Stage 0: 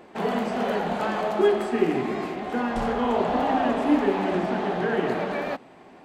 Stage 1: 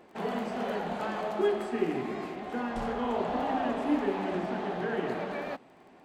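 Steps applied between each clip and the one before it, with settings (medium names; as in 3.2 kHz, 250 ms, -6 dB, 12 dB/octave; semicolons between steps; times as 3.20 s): crackle 14 per s -44 dBFS; trim -7 dB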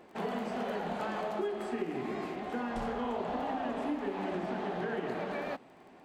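compression, threshold -31 dBFS, peak gain reduction 9 dB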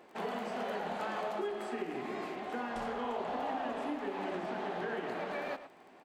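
bass shelf 230 Hz -10.5 dB; speakerphone echo 110 ms, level -11 dB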